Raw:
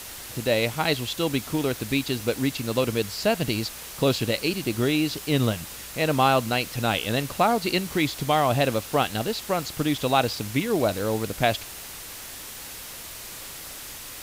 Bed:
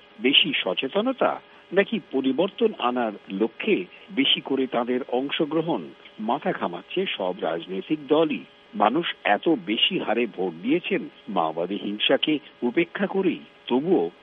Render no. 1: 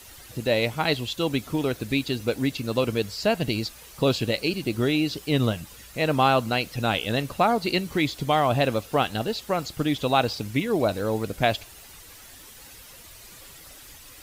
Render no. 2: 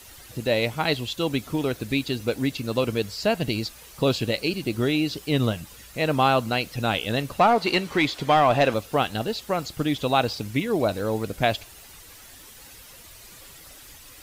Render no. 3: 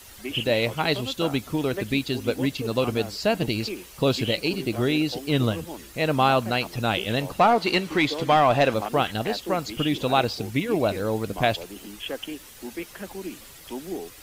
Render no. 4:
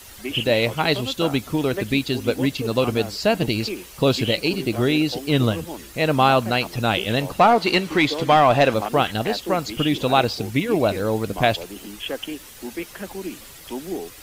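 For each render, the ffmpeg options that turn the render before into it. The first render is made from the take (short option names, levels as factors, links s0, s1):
-af "afftdn=nr=10:nf=-39"
-filter_complex "[0:a]asettb=1/sr,asplit=3[s0][s1][s2];[s0]atrim=end=7.394[s3];[s1]atrim=start=7.39:end=8.74,asetpts=PTS-STARTPTS,afade=t=in:d=0.004:c=qsin,afade=t=out:st=1.346:d=0.004:c=qsin,asplit=2[s4][s5];[s5]highpass=f=720:p=1,volume=5.01,asoftclip=type=tanh:threshold=0.422[s6];[s4][s6]amix=inputs=2:normalize=0,lowpass=f=2400:p=1,volume=0.501[s7];[s2]atrim=start=8.736[s8];[s3][s7]acrossfade=d=0.004:c1=hsin:c2=qsin[s9];[s9][s8]acrossfade=d=0.004:c1=qsin:c2=hsin"
-filter_complex "[1:a]volume=0.237[s0];[0:a][s0]amix=inputs=2:normalize=0"
-af "volume=1.5"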